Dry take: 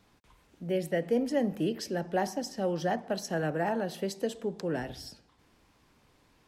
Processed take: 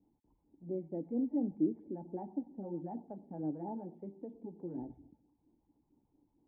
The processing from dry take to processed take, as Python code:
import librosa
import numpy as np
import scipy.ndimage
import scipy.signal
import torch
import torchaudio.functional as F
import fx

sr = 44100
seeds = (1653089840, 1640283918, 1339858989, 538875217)

y = fx.filter_lfo_notch(x, sr, shape='sine', hz=4.4, low_hz=270.0, high_hz=3100.0, q=0.89)
y = fx.formant_cascade(y, sr, vowel='u')
y = y * librosa.db_to_amplitude(2.5)